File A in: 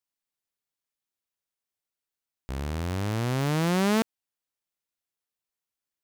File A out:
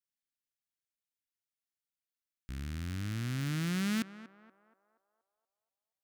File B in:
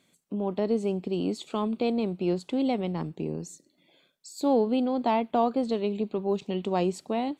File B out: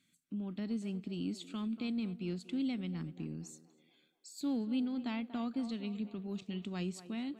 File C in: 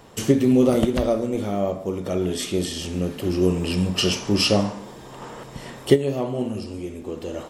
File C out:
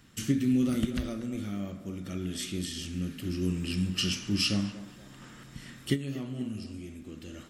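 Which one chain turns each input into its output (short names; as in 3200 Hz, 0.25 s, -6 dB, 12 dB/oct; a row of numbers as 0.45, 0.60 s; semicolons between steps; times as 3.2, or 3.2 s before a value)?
band shelf 640 Hz -15.5 dB; narrowing echo 0.238 s, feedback 57%, band-pass 740 Hz, level -11 dB; gain -7 dB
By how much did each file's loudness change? -8.0, -10.5, -9.0 LU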